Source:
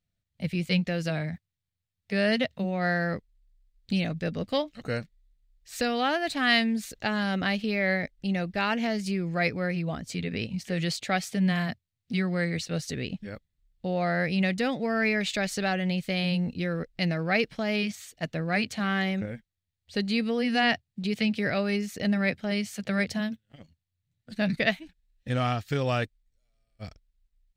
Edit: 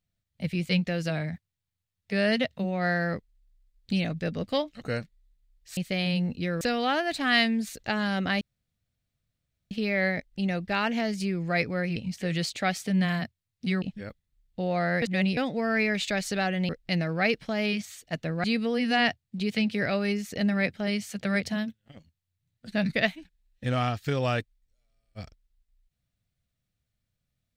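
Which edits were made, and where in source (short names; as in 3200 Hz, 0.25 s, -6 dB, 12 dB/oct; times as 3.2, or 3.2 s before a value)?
7.57 insert room tone 1.30 s
9.82–10.43 cut
12.29–13.08 cut
14.28–14.63 reverse
15.95–16.79 move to 5.77
18.54–20.08 cut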